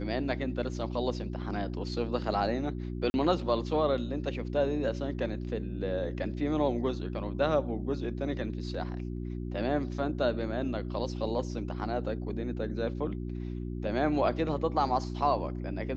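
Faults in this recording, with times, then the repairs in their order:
hum 60 Hz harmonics 6 -36 dBFS
3.10–3.14 s: dropout 41 ms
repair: de-hum 60 Hz, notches 6; interpolate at 3.10 s, 41 ms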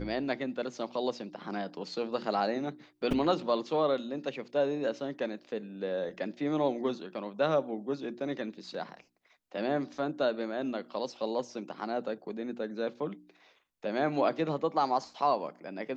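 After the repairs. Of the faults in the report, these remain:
nothing left

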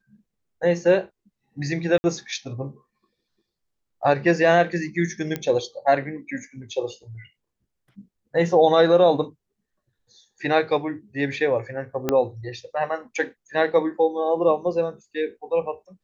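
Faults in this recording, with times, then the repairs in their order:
1.98–2.04 s: dropout 60 ms
5.36 s: pop -13 dBFS
12.09 s: pop -8 dBFS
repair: de-click; interpolate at 1.98 s, 60 ms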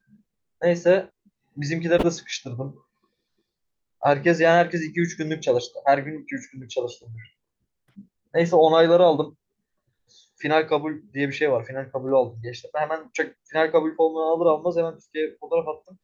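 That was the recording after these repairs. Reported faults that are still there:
12.09 s: pop

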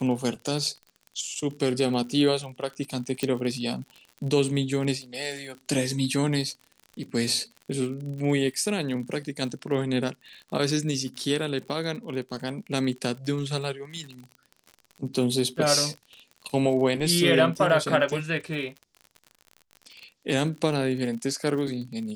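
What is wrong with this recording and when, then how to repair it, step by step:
crackle 49 per s -35 dBFS
3.23 s: pop -13 dBFS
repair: de-click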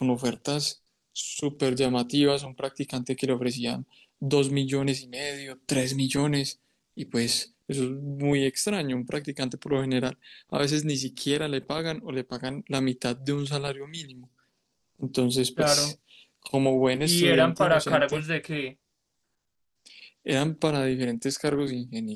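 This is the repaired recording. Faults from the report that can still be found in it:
nothing left

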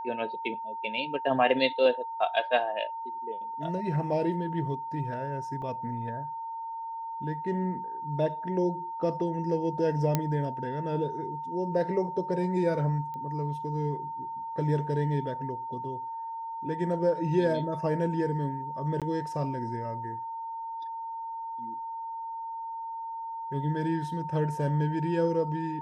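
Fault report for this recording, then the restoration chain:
whine 910 Hz -34 dBFS
5.62 s: dropout 2.5 ms
10.15 s: pop -11 dBFS
13.14 s: pop -28 dBFS
19.00–19.02 s: dropout 17 ms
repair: de-click; band-stop 910 Hz, Q 30; interpolate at 5.62 s, 2.5 ms; interpolate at 19.00 s, 17 ms

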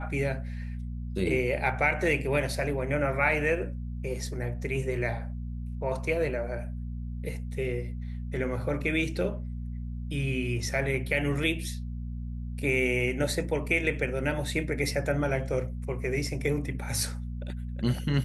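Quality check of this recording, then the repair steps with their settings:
hum 60 Hz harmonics 4 -35 dBFS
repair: de-hum 60 Hz, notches 4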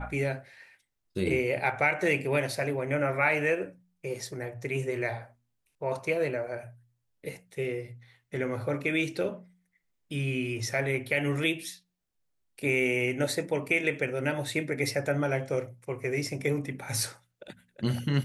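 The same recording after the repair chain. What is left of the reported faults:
nothing left

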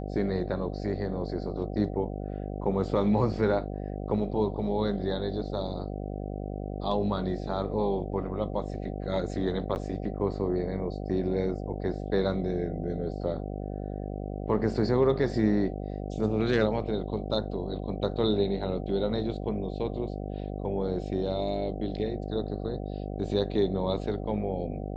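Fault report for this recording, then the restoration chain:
buzz 50 Hz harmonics 15 -35 dBFS
9.75–9.76 s: dropout 9.7 ms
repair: de-hum 50 Hz, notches 15; interpolate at 9.75 s, 9.7 ms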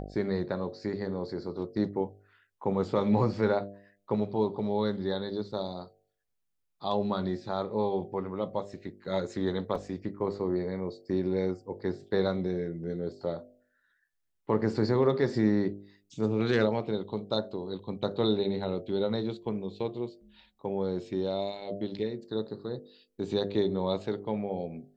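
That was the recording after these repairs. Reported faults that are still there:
nothing left

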